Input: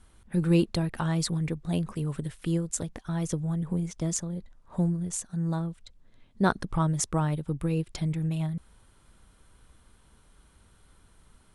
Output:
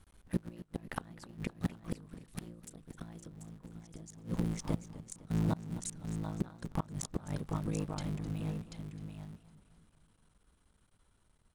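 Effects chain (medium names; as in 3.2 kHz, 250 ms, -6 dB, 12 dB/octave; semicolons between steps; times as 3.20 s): cycle switcher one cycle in 3, muted; Doppler pass-by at 3.22 s, 8 m/s, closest 2.2 m; compression 8:1, threshold -39 dBFS, peak gain reduction 14 dB; on a send: delay 737 ms -7 dB; on the sum: inverted gate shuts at -38 dBFS, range -25 dB; modulated delay 256 ms, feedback 51%, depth 122 cents, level -15.5 dB; trim +17.5 dB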